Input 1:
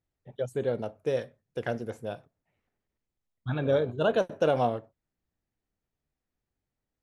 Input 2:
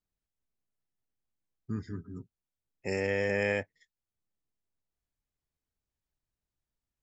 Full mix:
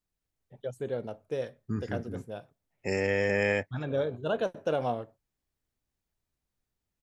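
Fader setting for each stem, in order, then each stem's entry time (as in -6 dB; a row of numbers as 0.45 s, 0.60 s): -4.5 dB, +2.5 dB; 0.25 s, 0.00 s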